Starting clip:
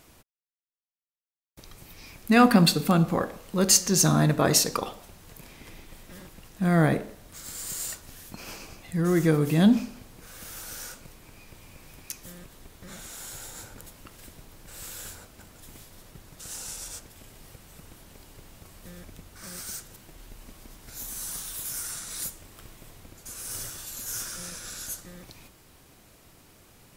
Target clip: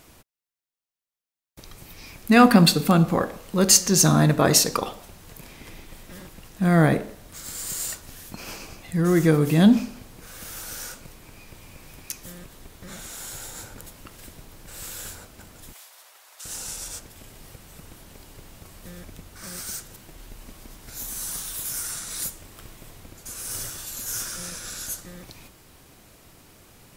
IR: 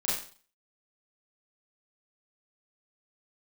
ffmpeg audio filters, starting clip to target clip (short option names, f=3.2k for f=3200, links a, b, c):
-filter_complex "[0:a]asplit=3[a][b][c];[a]afade=t=out:st=15.72:d=0.02[d];[b]highpass=f=670:w=0.5412,highpass=f=670:w=1.3066,afade=t=in:st=15.72:d=0.02,afade=t=out:st=16.44:d=0.02[e];[c]afade=t=in:st=16.44:d=0.02[f];[d][e][f]amix=inputs=3:normalize=0,volume=3.5dB"